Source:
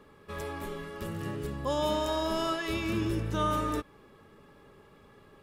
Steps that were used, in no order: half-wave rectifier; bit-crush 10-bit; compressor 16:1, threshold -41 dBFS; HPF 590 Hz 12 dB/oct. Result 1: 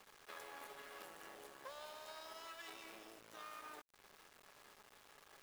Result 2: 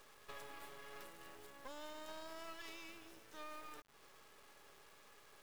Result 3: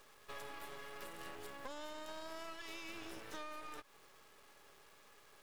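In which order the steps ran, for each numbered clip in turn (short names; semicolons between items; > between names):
compressor > half-wave rectifier > HPF > bit-crush; compressor > bit-crush > HPF > half-wave rectifier; bit-crush > HPF > compressor > half-wave rectifier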